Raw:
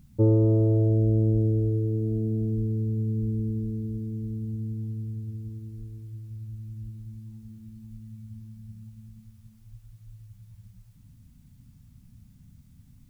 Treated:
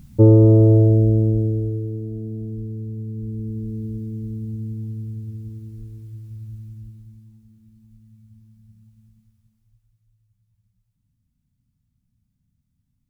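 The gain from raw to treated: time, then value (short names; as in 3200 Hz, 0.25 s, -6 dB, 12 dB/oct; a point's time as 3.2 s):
0.74 s +9 dB
2.11 s -3 dB
3.12 s -3 dB
3.83 s +3 dB
6.54 s +3 dB
7.47 s -7 dB
9.06 s -7 dB
10.16 s -18 dB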